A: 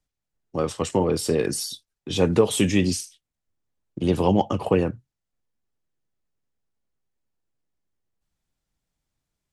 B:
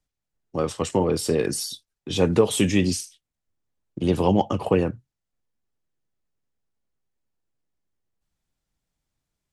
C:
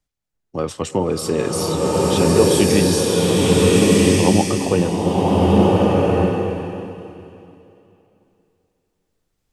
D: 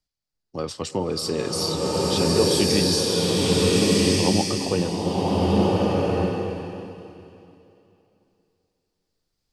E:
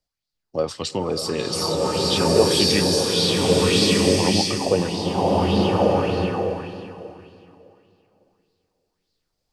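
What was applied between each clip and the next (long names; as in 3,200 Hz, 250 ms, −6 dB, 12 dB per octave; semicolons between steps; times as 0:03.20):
no processing that can be heard
slow-attack reverb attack 1,430 ms, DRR −6.5 dB; level +1.5 dB
parametric band 4,700 Hz +12 dB 0.55 octaves; level −6 dB
auto-filter bell 1.7 Hz 550–4,300 Hz +10 dB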